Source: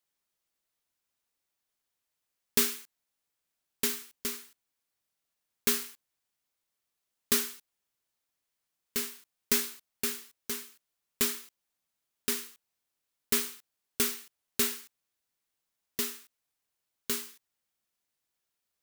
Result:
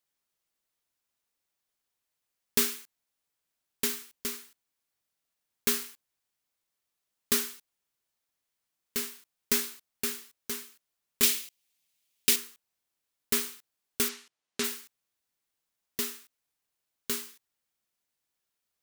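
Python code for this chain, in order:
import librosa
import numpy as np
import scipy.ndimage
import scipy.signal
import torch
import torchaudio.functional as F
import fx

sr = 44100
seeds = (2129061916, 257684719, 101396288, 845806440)

y = fx.high_shelf_res(x, sr, hz=1900.0, db=7.5, q=1.5, at=(11.23, 12.36))
y = fx.bandpass_edges(y, sr, low_hz=140.0, high_hz=6700.0, at=(14.08, 14.63), fade=0.02)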